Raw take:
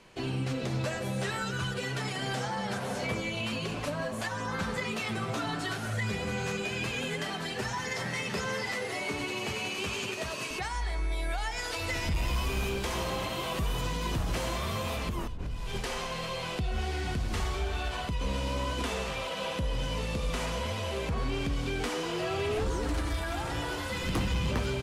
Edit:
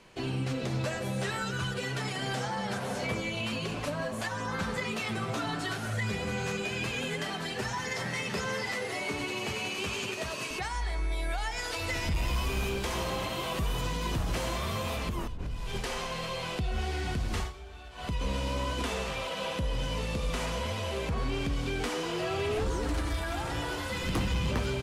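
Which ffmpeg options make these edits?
-filter_complex "[0:a]asplit=3[a][b][c];[a]atrim=end=17.53,asetpts=PTS-STARTPTS,afade=t=out:st=17.39:d=0.14:silence=0.199526[d];[b]atrim=start=17.53:end=17.95,asetpts=PTS-STARTPTS,volume=-14dB[e];[c]atrim=start=17.95,asetpts=PTS-STARTPTS,afade=t=in:d=0.14:silence=0.199526[f];[d][e][f]concat=n=3:v=0:a=1"

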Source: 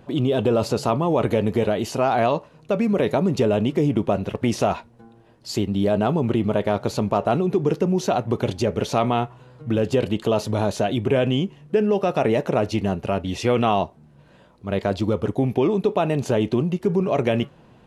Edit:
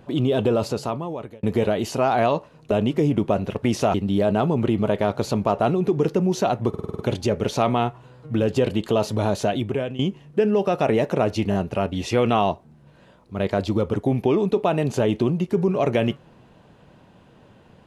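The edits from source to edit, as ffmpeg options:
-filter_complex "[0:a]asplit=13[a][b][c][d][e][f][g][h][i][j][k][l][m];[a]atrim=end=1.43,asetpts=PTS-STARTPTS,afade=t=out:st=0.43:d=1[n];[b]atrim=start=1.43:end=2.712,asetpts=PTS-STARTPTS,afade=t=in:d=0.004:c=hsin[o];[c]atrim=start=3.498:end=4.732[p];[d]atrim=start=5.598:end=8.402[q];[e]atrim=start=8.348:end=8.402[r];[f]atrim=start=8.348:end=8.402[s];[g]atrim=start=8.348:end=8.402[t];[h]atrim=start=8.348:end=8.402[u];[i]atrim=start=8.348:end=8.402[v];[j]atrim=start=8.348:end=11.35,asetpts=PTS-STARTPTS,afade=t=out:st=2.512:d=0.49:silence=0.16788[w];[k]atrim=start=11.35:end=12.882,asetpts=PTS-STARTPTS,afade=t=in:d=0.004:c=hsin:silence=0.16788[x];[l]atrim=start=12.858:end=12.882[y];[m]atrim=start=12.858[z];[n][o]concat=n=2:v=0:a=1[aa];[aa][p]acrossfade=d=0.004:c1=hsin:c2=hsin[ab];[ab][q]acrossfade=d=0.004:c1=hsin:c2=hsin[ac];[ac][r]acrossfade=d=0.004:c1=hsin:c2=hsin[ad];[ad][s]acrossfade=d=0.004:c1=hsin:c2=hsin[ae];[ae][t]acrossfade=d=0.004:c1=hsin:c2=hsin[af];[af][u]acrossfade=d=0.004:c1=hsin:c2=hsin[ag];[ag][v]acrossfade=d=0.004:c1=hsin:c2=hsin[ah];[w][x]concat=n=2:v=0:a=1[ai];[ah][ai]acrossfade=d=0.004:c1=hsin:c2=hsin[aj];[aj][y]acrossfade=d=0.004:c1=hsin:c2=hsin[ak];[ak][z]acrossfade=d=0.004:c1=hsin:c2=hsin"

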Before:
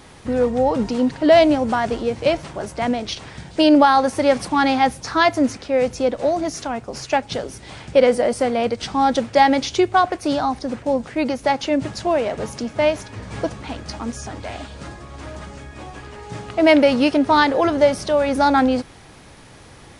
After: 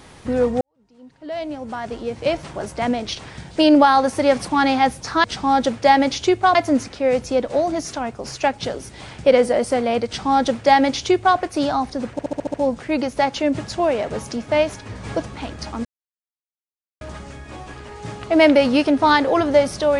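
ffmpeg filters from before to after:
-filter_complex "[0:a]asplit=12[a][b][c][d][e][f][g][h][i][j][k][l];[a]atrim=end=0.61,asetpts=PTS-STARTPTS,afade=t=out:st=0.606:d=0.004:c=hsin[m];[b]atrim=start=0.61:end=5.242,asetpts=PTS-STARTPTS,afade=t=in:d=1.92:c=qua[n];[c]atrim=start=8.748:end=10.062[o];[d]atrim=start=5.238:end=10.882[p];[e]atrim=start=10.808:end=10.882[q];[f]atrim=start=10.808:end=10.882[r];[g]atrim=start=10.808:end=10.882[s];[h]atrim=start=10.808:end=10.882[t];[i]atrim=start=10.808:end=10.882[u];[j]atrim=start=10.808:end=14.12,asetpts=PTS-STARTPTS,afade=t=out:st=3.308:d=0.004:c=hsin[v];[k]atrim=start=14.12:end=15.28,asetpts=PTS-STARTPTS,volume=0[w];[l]atrim=start=15.28,asetpts=PTS-STARTPTS,afade=t=in:d=0.004:c=hsin[x];[m][n]concat=n=2:v=0:a=1[y];[y][o]acrossfade=d=0.004:c1=hsin:c2=hsin[z];[z][p]acrossfade=d=0.004:c1=hsin:c2=hsin[aa];[aa][q]acrossfade=d=0.004:c1=hsin:c2=hsin[ab];[ab][r]acrossfade=d=0.004:c1=hsin:c2=hsin[ac];[ac][s]acrossfade=d=0.004:c1=hsin:c2=hsin[ad];[ad][t]acrossfade=d=0.004:c1=hsin:c2=hsin[ae];[ae][u]acrossfade=d=0.004:c1=hsin:c2=hsin[af];[v][w][x]concat=n=3:v=0:a=1[ag];[af][ag]acrossfade=d=0.004:c1=hsin:c2=hsin"

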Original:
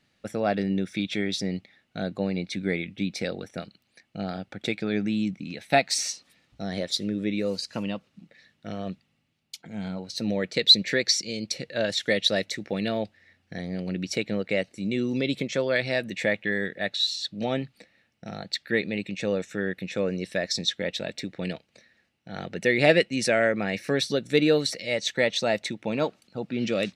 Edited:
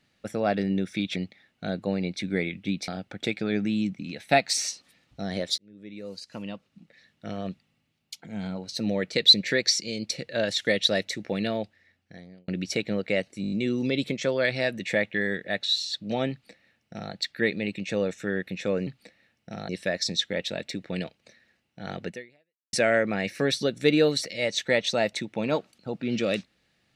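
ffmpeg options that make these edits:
-filter_complex "[0:a]asplit=13[a][b][c][d][e][f][g][h][i][j][k][l][m];[a]atrim=end=1.162[n];[b]atrim=start=1.488:end=3.212[o];[c]atrim=start=4.288:end=6.99,asetpts=PTS-STARTPTS,afade=t=out:st=2.698:d=0.004:c=hsin[p];[d]atrim=start=6.99:end=13.89,asetpts=PTS-STARTPTS,afade=t=in:d=1.71,afade=t=out:st=5.85:d=1.05[q];[e]atrim=start=13.89:end=14.852,asetpts=PTS-STARTPTS,afade=t=in:d=0.004:c=hsin[r];[f]atrim=start=14.828:end=14.852[s];[g]atrim=start=14.828:end=14.852[t];[h]atrim=start=14.828:end=14.852[u];[i]atrim=start=14.828:end=14.852[v];[j]atrim=start=14.828:end=20.182[w];[k]atrim=start=17.618:end=18.442[x];[l]atrim=start=20.178:end=23.22,asetpts=PTS-STARTPTS,afade=t=out:st=2.392:d=0.65:c=exp[y];[m]atrim=start=23.22,asetpts=PTS-STARTPTS,afade=t=in:d=0.004:c=hsin[z];[n][o]acrossfade=d=0.004:c1=hsin:c2=hsin[aa];[p][q][r]concat=n=3:v=0:a=1[ab];[aa][ab]acrossfade=d=0.004:c1=hsin:c2=hsin[ac];[ac][s]acrossfade=d=0.004:c1=hsin:c2=hsin[ad];[ad][t]acrossfade=d=0.004:c1=hsin:c2=hsin[ae];[ae][u]acrossfade=d=0.004:c1=hsin:c2=hsin[af];[af][v]acrossfade=d=0.004:c1=hsin:c2=hsin[ag];[ag][w]acrossfade=d=0.004:c1=hsin:c2=hsin[ah];[ah][x]acrossfade=d=0.004:c1=hsin:c2=hsin[ai];[y][z]concat=n=2:v=0:a=1[aj];[ai][aj]acrossfade=d=0.004:c1=hsin:c2=hsin"

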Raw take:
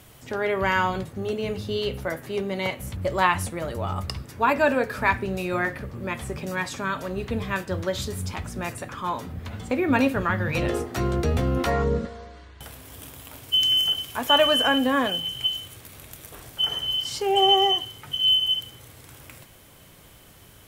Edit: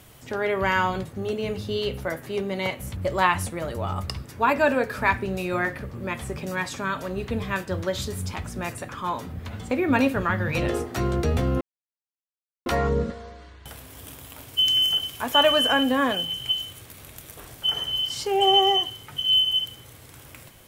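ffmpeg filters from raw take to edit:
-filter_complex "[0:a]asplit=2[a][b];[a]atrim=end=11.61,asetpts=PTS-STARTPTS,afade=t=out:st=11.606:d=0.004:c=hsin,apad=pad_dur=1.05[c];[b]atrim=start=11.61,asetpts=PTS-STARTPTS,afade=t=in:d=0.004:c=hsin[d];[c][d]concat=n=2:v=0:a=1"

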